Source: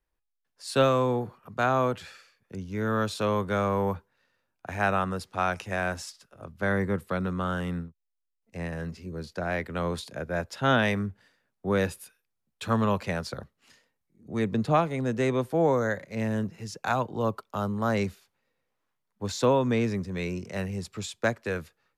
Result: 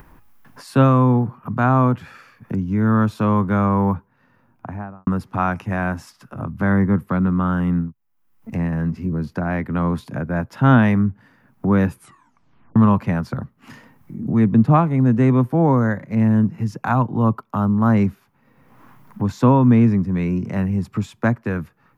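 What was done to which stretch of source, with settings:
3.95–5.07 s: studio fade out
11.92 s: tape stop 0.84 s
whole clip: upward compressor, threshold -28 dBFS; graphic EQ 125/250/500/1000/4000/8000 Hz +11/+10/-5/+7/-9/-10 dB; trim +2.5 dB

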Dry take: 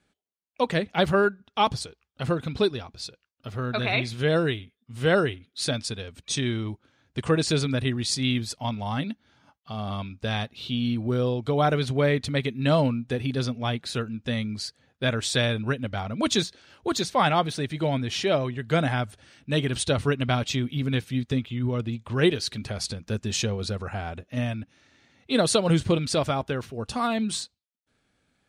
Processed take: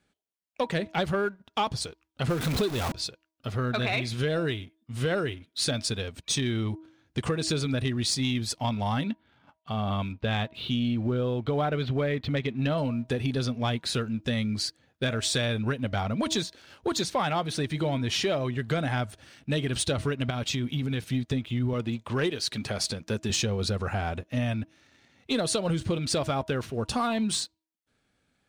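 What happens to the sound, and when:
2.29–2.92 s: jump at every zero crossing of -27 dBFS
9.04–12.78 s: low-pass 3.7 kHz 24 dB/octave
20.30–21.07 s: compression 5:1, threshold -28 dBFS
21.73–23.30 s: high-pass 180 Hz 6 dB/octave
whole clip: compression 6:1, threshold -27 dBFS; waveshaping leveller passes 1; de-hum 319.3 Hz, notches 3

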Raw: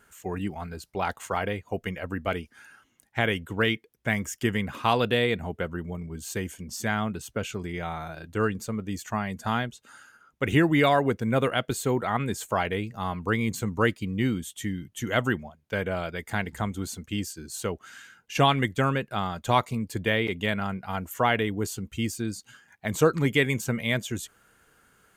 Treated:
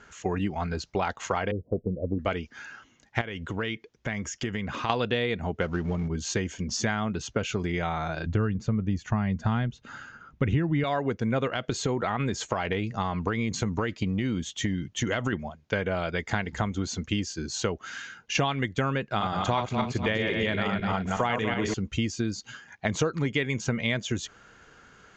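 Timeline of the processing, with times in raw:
1.51–2.19 s: steep low-pass 570 Hz 48 dB/octave
3.21–4.90 s: compression 3:1, threshold -38 dBFS
5.61–6.08 s: companding laws mixed up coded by mu
8.26–10.84 s: tone controls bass +12 dB, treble -7 dB
11.47–15.33 s: compression, threshold -25 dBFS
19.08–21.74 s: backward echo that repeats 123 ms, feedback 50%, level -3 dB
whole clip: steep low-pass 6.9 kHz 72 dB/octave; compression 6:1, threshold -32 dBFS; trim +8 dB

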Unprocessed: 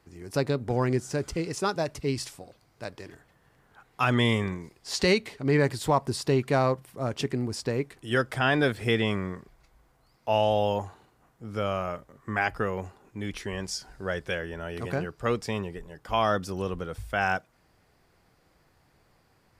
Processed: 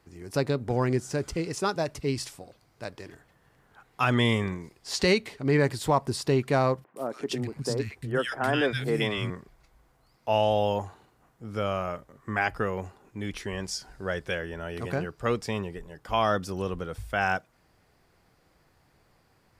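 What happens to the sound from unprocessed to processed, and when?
6.84–9.30 s: three bands offset in time mids, highs, lows 120/360 ms, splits 210/1600 Hz

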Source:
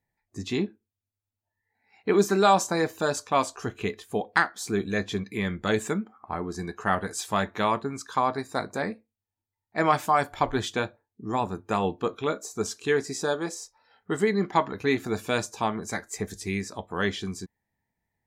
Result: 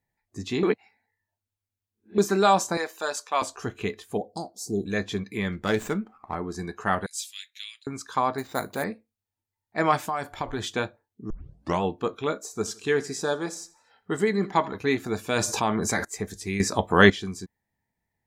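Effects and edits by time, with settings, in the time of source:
0.63–2.18 s: reverse
2.77–3.42 s: Bessel high-pass 670 Hz
4.17–4.86 s: Chebyshev band-stop 690–5000 Hz, order 3
5.52–6.35 s: sliding maximum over 3 samples
7.06–7.87 s: steep high-pass 2.6 kHz
8.38–8.84 s: careless resampling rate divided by 4×, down none, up hold
9.98–10.63 s: compression 3:1, threshold -26 dBFS
11.30 s: tape start 0.52 s
12.37–14.78 s: feedback delay 82 ms, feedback 40%, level -20 dB
15.36–16.05 s: level flattener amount 70%
16.60–17.10 s: gain +11.5 dB

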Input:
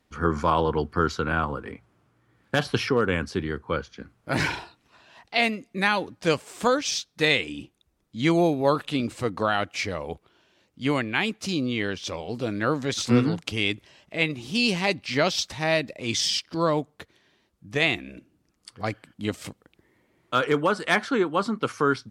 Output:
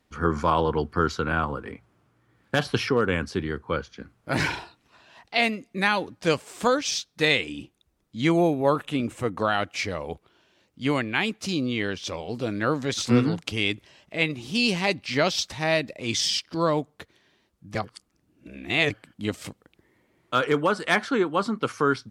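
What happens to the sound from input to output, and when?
8.27–9.39 s: peaking EQ 4.5 kHz -10.5 dB 0.58 oct
17.75–18.90 s: reverse

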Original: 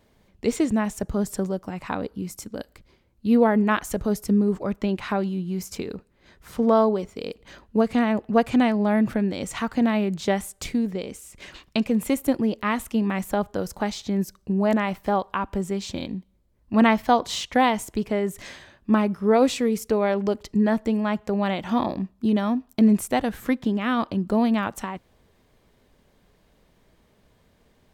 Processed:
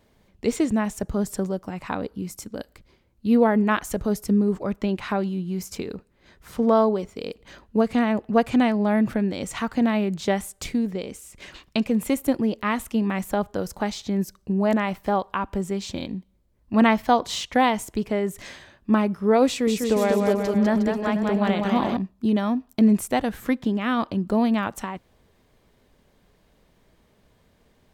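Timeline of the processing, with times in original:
19.47–21.97 s: bouncing-ball echo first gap 200 ms, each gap 0.8×, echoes 6

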